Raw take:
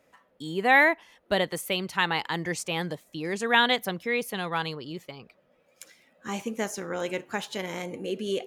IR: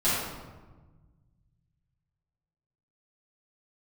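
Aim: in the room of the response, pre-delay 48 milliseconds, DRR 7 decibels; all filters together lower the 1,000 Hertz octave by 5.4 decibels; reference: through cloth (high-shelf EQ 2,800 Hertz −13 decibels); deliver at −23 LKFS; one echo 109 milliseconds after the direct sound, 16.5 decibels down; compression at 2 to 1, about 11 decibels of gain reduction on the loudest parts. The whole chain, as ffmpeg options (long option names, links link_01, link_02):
-filter_complex "[0:a]equalizer=frequency=1000:width_type=o:gain=-5.5,acompressor=threshold=-37dB:ratio=2,aecho=1:1:109:0.15,asplit=2[link_01][link_02];[1:a]atrim=start_sample=2205,adelay=48[link_03];[link_02][link_03]afir=irnorm=-1:irlink=0,volume=-20dB[link_04];[link_01][link_04]amix=inputs=2:normalize=0,highshelf=frequency=2800:gain=-13,volume=14.5dB"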